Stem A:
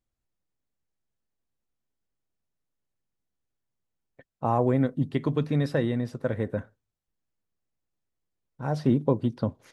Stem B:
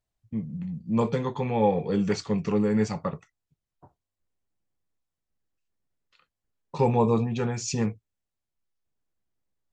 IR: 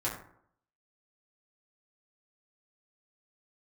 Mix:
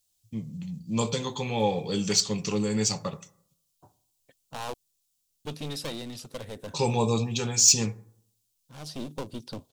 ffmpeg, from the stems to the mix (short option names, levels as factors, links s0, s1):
-filter_complex "[0:a]aeval=exprs='clip(val(0),-1,0.0237)':c=same,adelay=100,volume=0.501,asplit=3[s0][s1][s2];[s0]atrim=end=4.74,asetpts=PTS-STARTPTS,afade=t=out:st=4.736:d=0.004:c=hsin[s3];[s1]atrim=start=4.74:end=5.45,asetpts=PTS-STARTPTS,volume=0[s4];[s2]atrim=start=5.45,asetpts=PTS-STARTPTS,afade=t=in:d=0.004:c=hsin[s5];[s3][s4][s5]concat=n=3:v=0:a=1[s6];[1:a]bass=f=250:g=1,treble=f=4000:g=4,volume=0.631,asplit=3[s7][s8][s9];[s8]volume=0.15[s10];[s9]apad=whole_len=433295[s11];[s6][s11]sidechaincompress=threshold=0.0112:ratio=8:attack=49:release=1470[s12];[2:a]atrim=start_sample=2205[s13];[s10][s13]afir=irnorm=-1:irlink=0[s14];[s12][s7][s14]amix=inputs=3:normalize=0,lowshelf=f=170:g=-3.5,aexciter=amount=2.8:drive=9.5:freq=2700"